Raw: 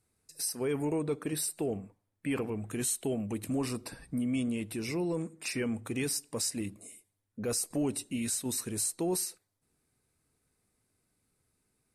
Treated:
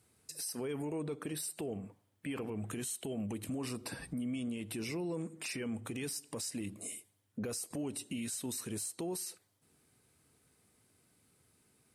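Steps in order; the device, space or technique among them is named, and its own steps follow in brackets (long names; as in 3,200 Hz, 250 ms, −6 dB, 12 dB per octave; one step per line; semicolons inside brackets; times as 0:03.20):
broadcast voice chain (high-pass filter 78 Hz; de-essing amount 50%; downward compressor 4 to 1, threshold −42 dBFS, peak gain reduction 12.5 dB; parametric band 3,100 Hz +5.5 dB 0.23 octaves; brickwall limiter −37.5 dBFS, peak gain reduction 8 dB)
level +7 dB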